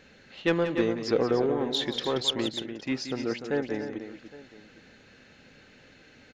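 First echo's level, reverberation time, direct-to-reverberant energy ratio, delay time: -10.5 dB, none, none, 0.179 s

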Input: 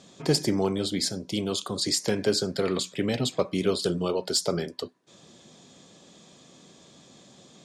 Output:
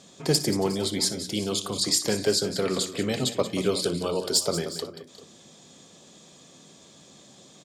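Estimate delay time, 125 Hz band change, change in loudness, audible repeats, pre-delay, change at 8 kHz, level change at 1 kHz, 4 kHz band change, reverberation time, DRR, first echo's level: 59 ms, -0.5 dB, +1.5 dB, 4, none, +4.5 dB, +0.5 dB, +2.5 dB, none, none, -16.0 dB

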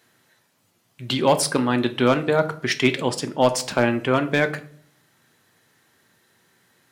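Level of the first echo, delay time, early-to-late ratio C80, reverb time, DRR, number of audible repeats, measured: none, none, 19.5 dB, 0.55 s, 8.5 dB, none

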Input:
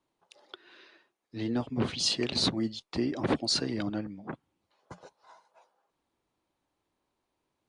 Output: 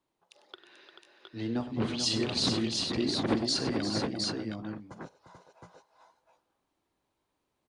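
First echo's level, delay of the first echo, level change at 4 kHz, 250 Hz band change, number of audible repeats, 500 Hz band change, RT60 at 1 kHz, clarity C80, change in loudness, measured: -15.5 dB, 45 ms, +0.5 dB, +1.0 dB, 5, +0.5 dB, none, none, 0.0 dB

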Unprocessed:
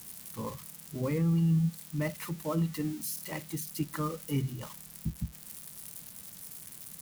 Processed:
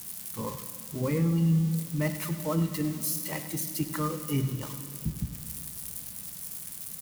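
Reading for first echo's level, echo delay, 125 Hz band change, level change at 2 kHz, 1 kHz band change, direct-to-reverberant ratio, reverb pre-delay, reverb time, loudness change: -14.0 dB, 0.1 s, +2.5 dB, +3.5 dB, +3.0 dB, 8.5 dB, 15 ms, 3.0 s, +3.5 dB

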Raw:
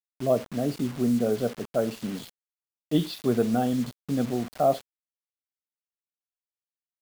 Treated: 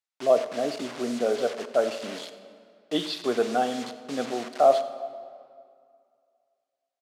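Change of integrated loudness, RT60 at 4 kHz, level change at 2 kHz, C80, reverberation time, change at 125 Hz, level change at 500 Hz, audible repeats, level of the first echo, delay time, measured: +0.5 dB, 1.5 s, +5.5 dB, 12.5 dB, 2.2 s, -16.5 dB, +3.0 dB, 1, -19.0 dB, 97 ms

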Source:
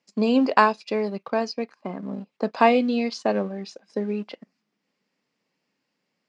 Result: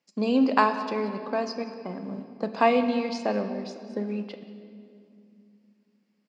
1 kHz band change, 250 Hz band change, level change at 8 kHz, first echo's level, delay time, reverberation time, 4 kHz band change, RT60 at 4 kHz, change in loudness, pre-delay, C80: -3.0 dB, -2.0 dB, n/a, -21.0 dB, 0.183 s, 2.6 s, -3.5 dB, 1.8 s, -3.0 dB, 4 ms, 10.0 dB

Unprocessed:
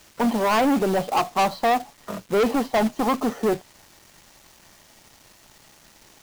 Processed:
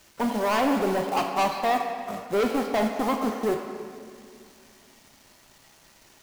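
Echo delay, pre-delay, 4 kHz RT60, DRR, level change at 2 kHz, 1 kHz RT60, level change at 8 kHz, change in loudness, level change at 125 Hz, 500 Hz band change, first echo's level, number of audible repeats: none, 3 ms, 1.5 s, 2.5 dB, -2.5 dB, 2.1 s, -3.5 dB, -3.5 dB, -4.5 dB, -2.5 dB, none, none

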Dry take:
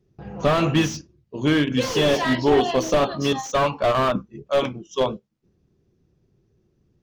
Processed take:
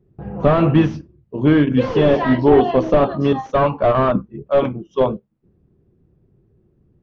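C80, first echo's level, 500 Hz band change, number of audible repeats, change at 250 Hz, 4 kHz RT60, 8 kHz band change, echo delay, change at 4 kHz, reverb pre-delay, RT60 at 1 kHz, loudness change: none, none, +5.0 dB, none, +6.5 dB, none, under -15 dB, none, -7.0 dB, none, none, +5.0 dB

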